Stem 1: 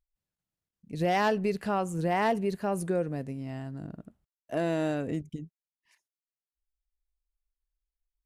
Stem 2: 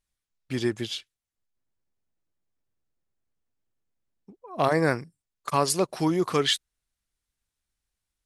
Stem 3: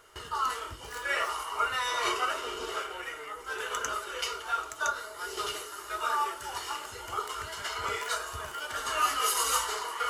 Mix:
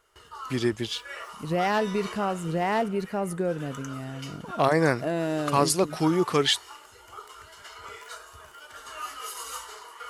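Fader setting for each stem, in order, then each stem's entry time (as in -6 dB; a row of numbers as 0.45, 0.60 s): +1.0, +1.0, -9.5 dB; 0.50, 0.00, 0.00 s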